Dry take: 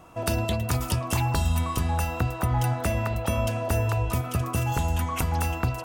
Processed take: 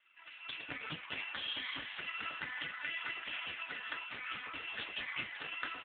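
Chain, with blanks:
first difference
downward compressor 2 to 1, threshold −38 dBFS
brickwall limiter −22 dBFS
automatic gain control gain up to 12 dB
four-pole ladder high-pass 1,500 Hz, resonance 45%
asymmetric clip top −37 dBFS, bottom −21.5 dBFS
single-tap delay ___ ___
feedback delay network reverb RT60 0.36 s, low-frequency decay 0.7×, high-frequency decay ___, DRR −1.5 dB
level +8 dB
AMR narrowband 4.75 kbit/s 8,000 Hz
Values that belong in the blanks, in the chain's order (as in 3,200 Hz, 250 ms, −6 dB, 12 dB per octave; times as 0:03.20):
429 ms, −18.5 dB, 0.65×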